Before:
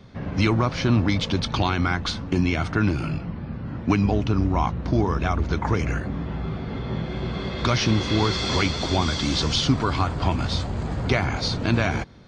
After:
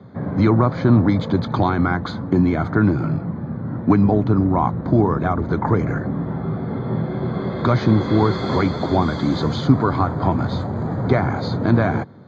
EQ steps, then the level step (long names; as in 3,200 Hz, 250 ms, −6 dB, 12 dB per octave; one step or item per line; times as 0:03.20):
moving average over 16 samples
high-pass filter 100 Hz 24 dB per octave
+6.5 dB